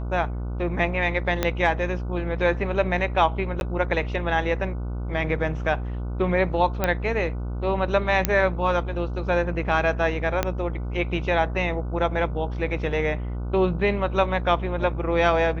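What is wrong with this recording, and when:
mains buzz 60 Hz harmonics 25 −29 dBFS
0:01.43: click −7 dBFS
0:03.60–0:03.61: drop-out 11 ms
0:06.84: click −8 dBFS
0:08.25: click −4 dBFS
0:10.43: click −7 dBFS

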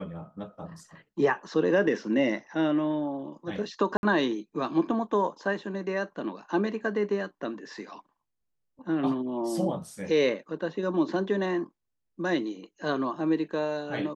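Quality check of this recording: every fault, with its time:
0:03.97–0:04.03: drop-out 61 ms

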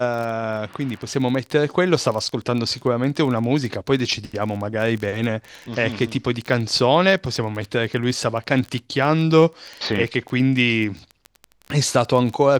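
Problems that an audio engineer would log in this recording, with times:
surface crackle 20 per second −25 dBFS

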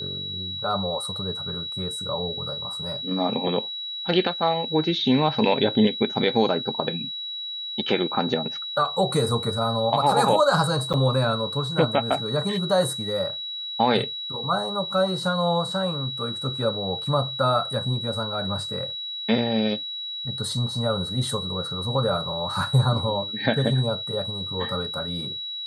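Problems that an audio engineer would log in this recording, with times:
whistle 3,900 Hz −30 dBFS
0:10.93–0:10.94: drop-out 7.7 ms

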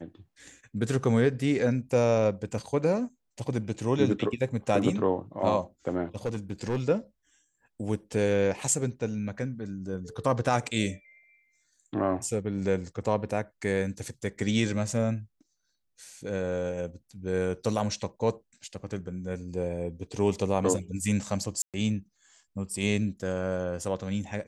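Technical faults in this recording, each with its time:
0:06.25–0:06.82: clipping −24 dBFS
0:21.62–0:21.74: drop-out 117 ms

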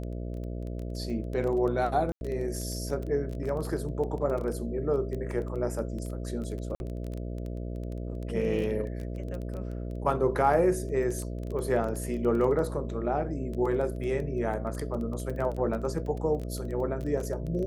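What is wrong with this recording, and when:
mains buzz 60 Hz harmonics 11 −35 dBFS
surface crackle 12 per second −33 dBFS
0:02.12–0:02.21: drop-out 91 ms
0:06.75–0:06.80: drop-out 51 ms

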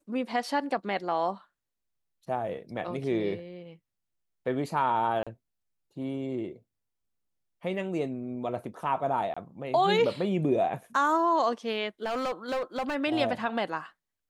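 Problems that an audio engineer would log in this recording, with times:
0:05.23–0:05.27: drop-out 36 ms
0:09.34–0:09.37: drop-out 25 ms
0:12.04–0:12.96: clipping −26.5 dBFS

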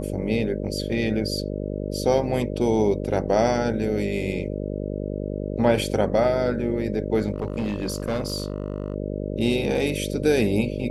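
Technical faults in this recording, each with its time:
mains buzz 50 Hz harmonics 12 −29 dBFS
0:07.34–0:08.94: clipping −21 dBFS

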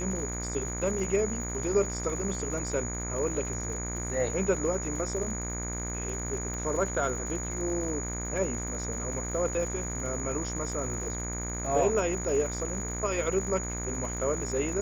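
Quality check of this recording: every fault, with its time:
mains buzz 60 Hz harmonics 40 −36 dBFS
surface crackle 110 per second −39 dBFS
whistle 6,800 Hz −36 dBFS
0:06.54: click −25 dBFS

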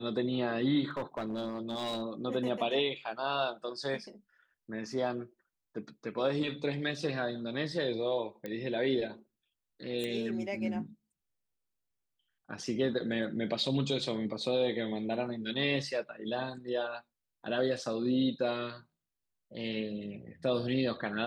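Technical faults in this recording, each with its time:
0:00.91–0:02.03: clipping −30.5 dBFS
0:08.46: click −25 dBFS
0:10.04: click −23 dBFS

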